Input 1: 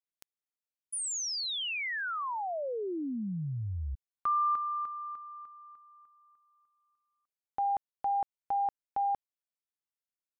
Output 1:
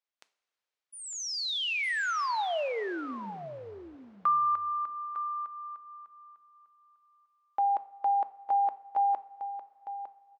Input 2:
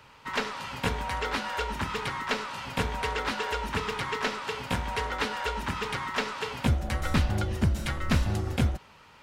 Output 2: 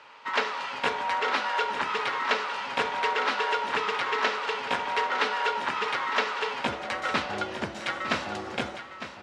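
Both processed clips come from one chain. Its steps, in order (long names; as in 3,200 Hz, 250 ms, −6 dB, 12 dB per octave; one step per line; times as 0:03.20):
high-pass filter 450 Hz 12 dB per octave
high-frequency loss of the air 110 metres
single-tap delay 906 ms −11 dB
coupled-rooms reverb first 0.4 s, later 4.2 s, from −17 dB, DRR 12.5 dB
level +5 dB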